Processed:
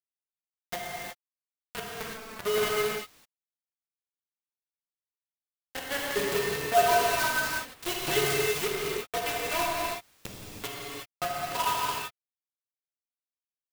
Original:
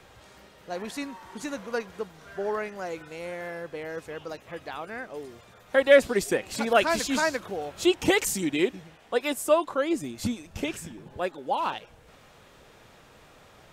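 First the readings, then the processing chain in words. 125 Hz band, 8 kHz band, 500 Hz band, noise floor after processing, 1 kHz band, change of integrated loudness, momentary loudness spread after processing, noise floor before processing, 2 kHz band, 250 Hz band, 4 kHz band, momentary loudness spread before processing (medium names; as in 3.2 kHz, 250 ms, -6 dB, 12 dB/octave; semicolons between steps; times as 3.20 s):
-1.0 dB, 0.0 dB, -5.0 dB, under -85 dBFS, +1.5 dB, -1.5 dB, 15 LU, -55 dBFS, -1.0 dB, -11.5 dB, +1.5 dB, 16 LU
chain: in parallel at -2 dB: peak limiter -17 dBFS, peak gain reduction 11.5 dB; on the sum: feedback comb 140 Hz, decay 0.16 s, harmonics odd, mix 100%; bit crusher 5-bit; gated-style reverb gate 390 ms flat, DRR -4.5 dB; sampling jitter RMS 0.028 ms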